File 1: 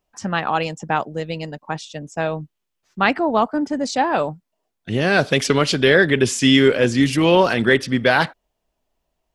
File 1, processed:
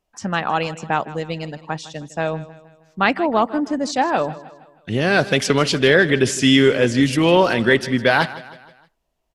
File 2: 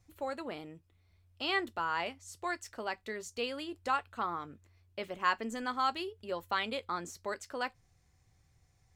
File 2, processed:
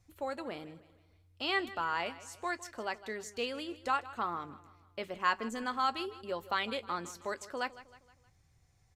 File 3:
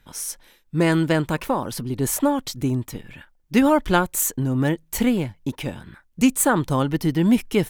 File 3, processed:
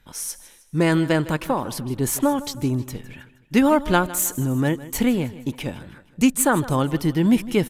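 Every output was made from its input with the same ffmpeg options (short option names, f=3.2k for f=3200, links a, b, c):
-af "aecho=1:1:157|314|471|628:0.141|0.0664|0.0312|0.0147,aresample=32000,aresample=44100"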